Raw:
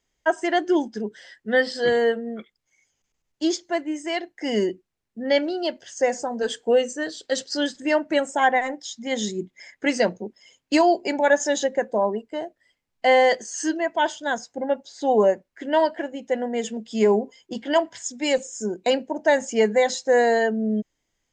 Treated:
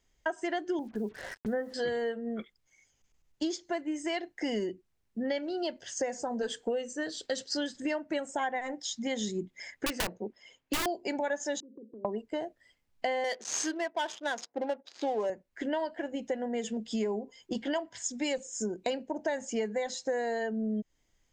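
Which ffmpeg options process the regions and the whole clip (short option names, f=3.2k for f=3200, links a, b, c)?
-filter_complex "[0:a]asettb=1/sr,asplit=3[a][b][c];[a]atrim=end=0.794[d];[b]atrim=start=0.79:end=1.74,asetpts=PTS-STARTPTS,afade=t=in:d=0.004:c=qsin,afade=t=out:st=0.946:d=0.004:c=qsin,lowpass=f=1.4k:w=0.5412,lowpass=f=1.4k:w=1.3066,acrusher=bits=8:mix=0:aa=0.5,acompressor=mode=upward:threshold=-27dB:ratio=2.5:attack=3.2:release=140:knee=2.83:detection=peak[e];[c]atrim=start=1.736[f];[d][e]acrossfade=d=0.004:c1=hsin:c2=qsin[g];[g][f]acrossfade=d=0.004:c1=qsin:c2=hsin,asettb=1/sr,asplit=3[h][i][j];[h]atrim=end=9.864[k];[i]atrim=start=9.86:end=10.86,asetpts=PTS-STARTPTS,afade=t=in:d=0.004:c=qsin,afade=t=out:st=0.996:d=0.004:c=qsin,bass=f=250:g=-6,treble=f=4k:g=-10,aeval=exprs='(mod(5.62*val(0)+1,2)-1)/5.62':c=same[l];[j]atrim=start=10.856[m];[k][l]acrossfade=d=0.004:c1=hsin:c2=qsin[n];[n][m]acrossfade=d=0.004:c1=qsin:c2=hsin,asettb=1/sr,asplit=3[o][p][q];[o]atrim=end=11.604[r];[p]atrim=start=11.6:end=12.05,asetpts=PTS-STARTPTS,afade=t=in:d=0.004:c=qsin,afade=t=out:st=0.446:d=0.004:c=qsin,asuperpass=centerf=300:order=8:qfactor=1.4,acompressor=threshold=-48dB:ratio=4:attack=3.2:release=140:knee=1:detection=peak[s];[q]atrim=start=12.046[t];[r][s]acrossfade=d=0.004:c1=hsin:c2=qsin[u];[u][t]acrossfade=d=0.004:c1=qsin:c2=hsin,asettb=1/sr,asplit=3[v][w][x];[v]atrim=end=13.244[y];[w]atrim=start=13.24:end=15.3,asetpts=PTS-STARTPTS,afade=t=in:d=0.004:c=qsin,afade=t=out:st=2.056:d=0.004:c=qsin,aemphasis=mode=production:type=75kf,adynamicsmooth=sensitivity=6:basefreq=760,highpass=300,lowpass=6.9k[z];[x]atrim=start=15.296[aa];[y][z]acrossfade=d=0.004:c1=hsin:c2=qsin[ab];[ab][aa]acrossfade=d=0.004:c1=qsin:c2=hsin,lowshelf=f=94:g=9,acompressor=threshold=-30dB:ratio=6"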